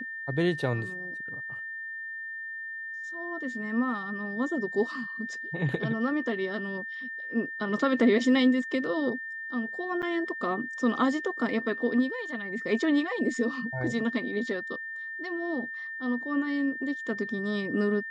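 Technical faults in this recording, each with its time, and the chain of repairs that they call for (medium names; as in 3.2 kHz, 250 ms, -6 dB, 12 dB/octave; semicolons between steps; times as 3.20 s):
whine 1.8 kHz -35 dBFS
10.02–10.03 s: dropout 6.8 ms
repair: band-stop 1.8 kHz, Q 30; interpolate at 10.02 s, 6.8 ms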